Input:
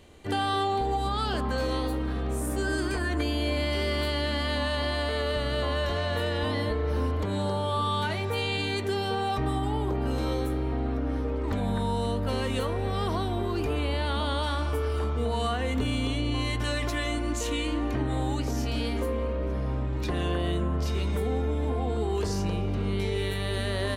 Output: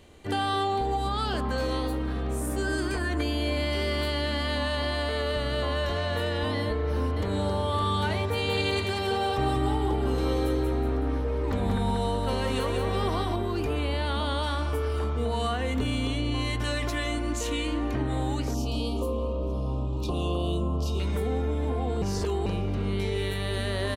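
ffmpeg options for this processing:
-filter_complex "[0:a]asplit=2[a][b];[b]afade=t=in:st=6.6:d=0.01,afade=t=out:st=7.69:d=0.01,aecho=0:1:560|1120|1680|2240|2800|3360|3920|4480|5040:0.446684|0.290344|0.188724|0.12267|0.0797358|0.0518283|0.0336884|0.0218974|0.0142333[c];[a][c]amix=inputs=2:normalize=0,asettb=1/sr,asplit=3[d][e][f];[d]atrim=end=8.294[g];[e]atrim=start=8.29:end=13.36,asetpts=PTS-STARTPTS,afade=t=in:d=0.004:c=qsin,afade=t=out:st=5.066:d=0.004:c=qsin,aecho=1:1:186|372|558|744|930:0.631|0.271|0.117|0.0502|0.0216,atrim=end_sample=223587[h];[f]atrim=start=13.356[i];[g][h]acrossfade=d=0.004:c1=hsin:c2=qsin[j];[j][i]acrossfade=d=0.004:c1=qsin:c2=hsin,asettb=1/sr,asplit=3[k][l][m];[k]atrim=end=18.544[n];[l]atrim=start=18.54:end=21,asetpts=PTS-STARTPTS,afade=t=in:d=0.004:c=qsin,afade=t=out:st=2.456:d=0.004:c=qsin,asuperstop=centerf=1800:order=8:qfactor=1.3[o];[m]atrim=start=20.996[p];[n][o]acrossfade=d=0.004:c1=hsin:c2=qsin[q];[q][p]acrossfade=d=0.004:c1=qsin:c2=hsin,asplit=3[r][s][t];[r]atrim=end=22.022[u];[s]atrim=start=22.018:end=22.462,asetpts=PTS-STARTPTS,areverse[v];[t]atrim=start=22.458[w];[u][v]acrossfade=d=0.004:c1=hsin:c2=hsin[x];[x][w]acrossfade=d=0.004:c1=hsin:c2=hsin"

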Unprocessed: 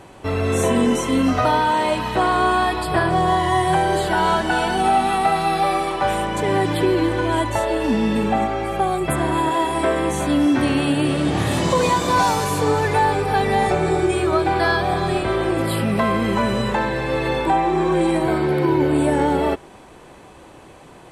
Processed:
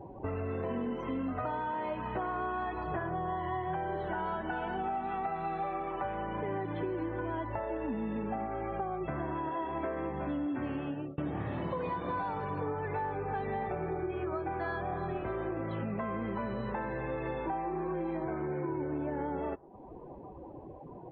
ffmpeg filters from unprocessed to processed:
-filter_complex "[0:a]asplit=2[a][b];[a]atrim=end=11.18,asetpts=PTS-STARTPTS,afade=t=out:st=10.53:d=0.65:c=qsin[c];[b]atrim=start=11.18,asetpts=PTS-STARTPTS,afade=t=in:d=0.004:c=hsin[d];[c][d]concat=n=2:v=0:a=1,lowpass=2k,afftdn=nr=25:nf=-39,acompressor=threshold=-36dB:ratio=4"

